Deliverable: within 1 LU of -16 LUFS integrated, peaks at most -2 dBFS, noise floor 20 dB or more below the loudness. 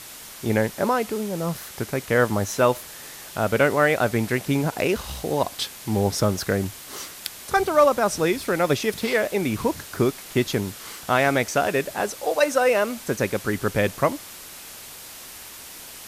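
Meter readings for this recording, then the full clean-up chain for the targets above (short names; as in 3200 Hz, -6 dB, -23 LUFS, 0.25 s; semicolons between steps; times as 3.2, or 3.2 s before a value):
noise floor -41 dBFS; noise floor target -44 dBFS; loudness -23.5 LUFS; peak -6.0 dBFS; loudness target -16.0 LUFS
-> denoiser 6 dB, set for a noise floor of -41 dBFS; gain +7.5 dB; limiter -2 dBFS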